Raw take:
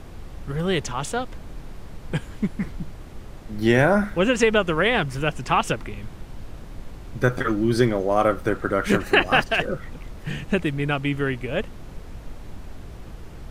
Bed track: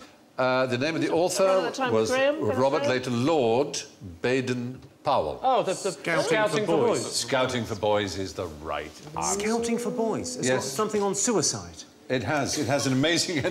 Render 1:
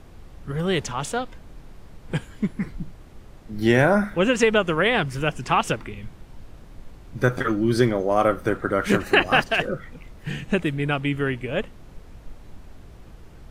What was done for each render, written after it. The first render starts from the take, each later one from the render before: noise print and reduce 6 dB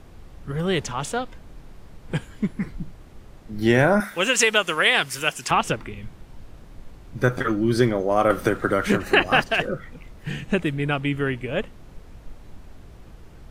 4–5.51 tilt +4 dB/oct; 8.3–9.13 three-band squash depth 100%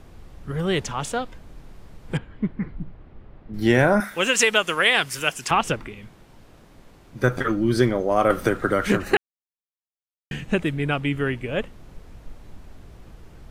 2.17–3.54 air absorption 390 m; 5.88–7.24 low shelf 110 Hz -12 dB; 9.17–10.31 mute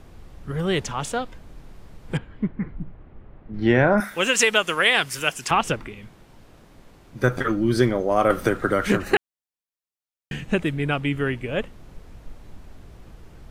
2.44–3.98 LPF 2900 Hz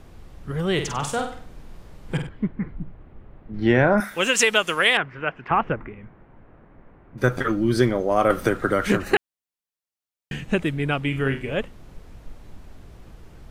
0.73–2.29 flutter echo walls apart 8.3 m, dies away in 0.46 s; 4.97–7.18 LPF 2000 Hz 24 dB/oct; 11.03–11.54 flutter echo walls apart 6.3 m, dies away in 0.29 s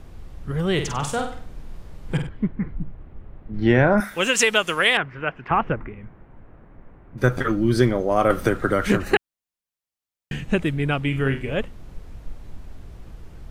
low shelf 120 Hz +6 dB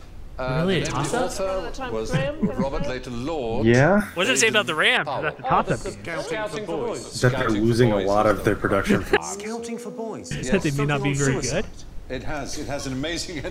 add bed track -4.5 dB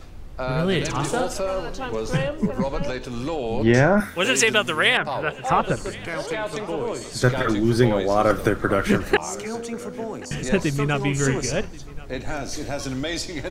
feedback echo 1.083 s, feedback 35%, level -21 dB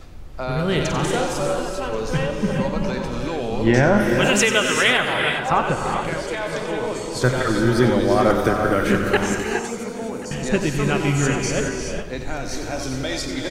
echo 91 ms -10.5 dB; non-linear reverb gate 0.44 s rising, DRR 3 dB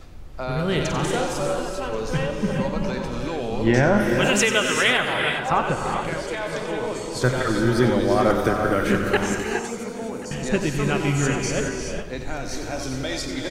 gain -2 dB

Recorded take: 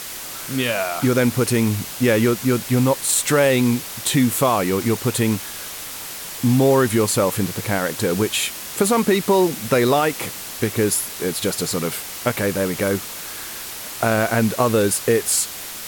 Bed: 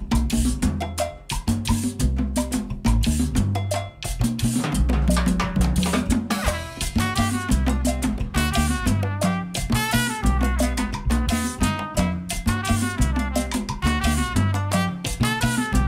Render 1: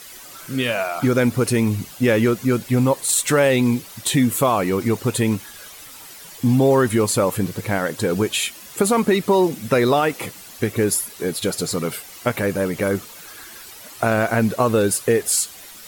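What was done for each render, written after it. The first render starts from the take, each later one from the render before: denoiser 11 dB, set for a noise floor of -33 dBFS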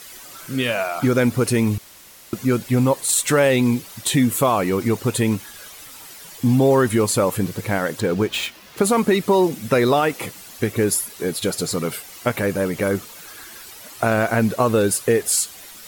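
1.78–2.33 room tone; 8–8.83 median filter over 5 samples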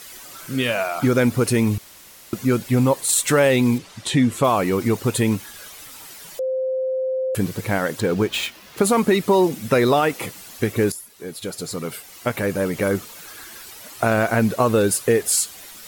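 3.78–4.44 air absorption 64 m; 6.39–7.35 bleep 521 Hz -20 dBFS; 10.92–12.78 fade in, from -14.5 dB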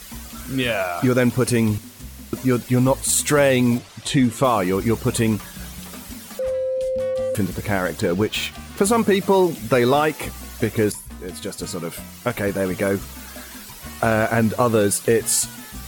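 add bed -17 dB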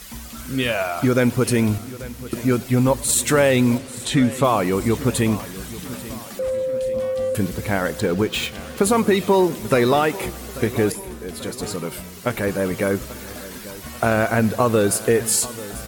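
feedback echo 0.839 s, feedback 56%, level -17 dB; warbling echo 0.104 s, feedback 78%, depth 104 cents, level -24 dB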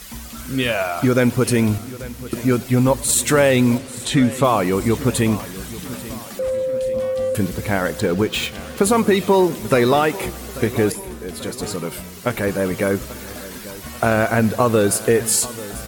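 gain +1.5 dB

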